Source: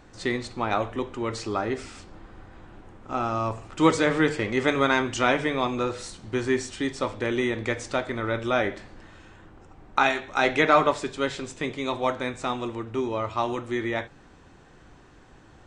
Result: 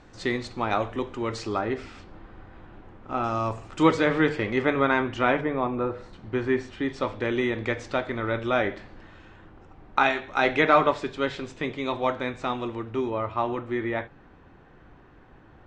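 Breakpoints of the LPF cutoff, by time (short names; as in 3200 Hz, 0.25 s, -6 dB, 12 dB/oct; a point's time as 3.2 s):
6700 Hz
from 1.59 s 3600 Hz
from 3.24 s 8300 Hz
from 3.83 s 3900 Hz
from 4.62 s 2400 Hz
from 5.41 s 1400 Hz
from 6.13 s 2500 Hz
from 6.9 s 4100 Hz
from 13.1 s 2400 Hz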